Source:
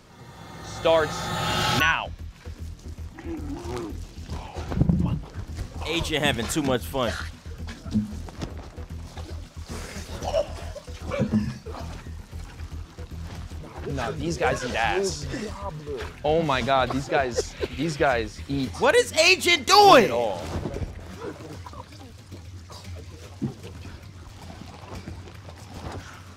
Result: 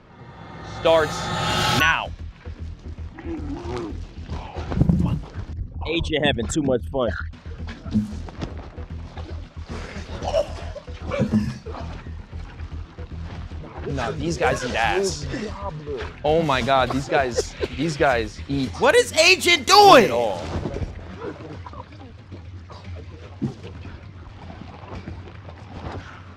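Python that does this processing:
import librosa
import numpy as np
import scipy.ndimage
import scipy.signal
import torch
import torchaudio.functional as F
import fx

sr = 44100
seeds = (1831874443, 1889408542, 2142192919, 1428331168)

y = fx.envelope_sharpen(x, sr, power=2.0, at=(5.53, 7.33))
y = fx.env_lowpass(y, sr, base_hz=2400.0, full_db=-20.0)
y = y * librosa.db_to_amplitude(3.0)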